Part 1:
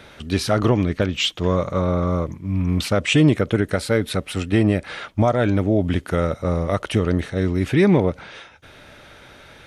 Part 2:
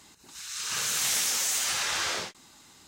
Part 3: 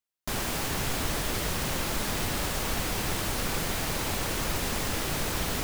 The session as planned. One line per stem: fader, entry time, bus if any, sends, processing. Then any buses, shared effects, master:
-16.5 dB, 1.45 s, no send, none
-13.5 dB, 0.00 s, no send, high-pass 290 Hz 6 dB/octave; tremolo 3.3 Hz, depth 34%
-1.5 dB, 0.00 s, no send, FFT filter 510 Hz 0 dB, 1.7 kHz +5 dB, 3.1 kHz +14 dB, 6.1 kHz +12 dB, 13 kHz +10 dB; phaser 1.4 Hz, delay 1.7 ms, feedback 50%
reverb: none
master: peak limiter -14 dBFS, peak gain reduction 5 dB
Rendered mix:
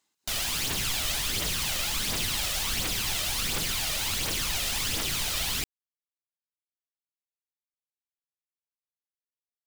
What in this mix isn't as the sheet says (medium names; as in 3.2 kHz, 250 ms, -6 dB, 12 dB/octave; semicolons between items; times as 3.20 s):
stem 1: muted; stem 2 -13.5 dB -> -21.5 dB; stem 3 -1.5 dB -> -8.5 dB